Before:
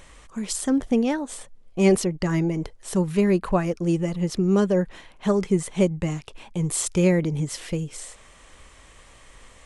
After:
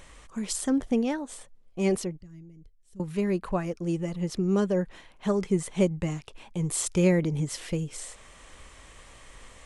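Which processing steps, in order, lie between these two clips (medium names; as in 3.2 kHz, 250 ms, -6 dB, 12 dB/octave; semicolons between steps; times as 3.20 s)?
2.21–3.00 s: amplifier tone stack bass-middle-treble 10-0-1; gain riding within 5 dB 2 s; trim -5 dB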